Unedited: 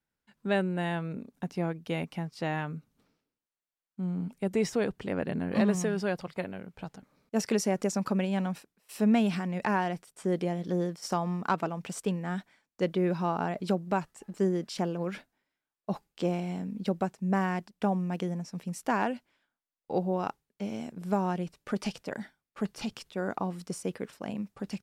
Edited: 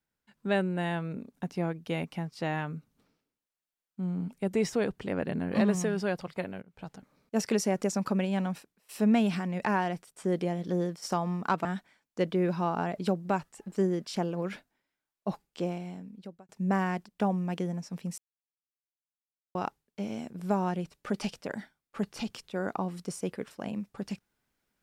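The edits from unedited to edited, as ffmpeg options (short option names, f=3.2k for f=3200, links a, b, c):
-filter_complex "[0:a]asplit=6[a][b][c][d][e][f];[a]atrim=end=6.62,asetpts=PTS-STARTPTS,afade=t=out:st=6.616:d=0.004:c=hsin:silence=0.0841395[g];[b]atrim=start=6.62:end=11.652,asetpts=PTS-STARTPTS,afade=t=in:d=0.3:silence=0.0841395[h];[c]atrim=start=12.268:end=17.11,asetpts=PTS-STARTPTS,afade=t=out:st=3.662:d=1.18[i];[d]atrim=start=17.11:end=18.8,asetpts=PTS-STARTPTS,afade=t=in:d=0.004:c=hsin,afade=t=out:st=1.686:d=0.004:c=hsin[j];[e]atrim=start=18.8:end=20.17,asetpts=PTS-STARTPTS,volume=0[k];[f]atrim=start=20.17,asetpts=PTS-STARTPTS,afade=t=in:d=0.004:c=hsin[l];[g][h]concat=n=2:v=0:a=1[m];[i][j][k][l]concat=n=4:v=0:a=1[n];[m][n]acrossfade=d=0.004:c1=hsin:c2=hsin"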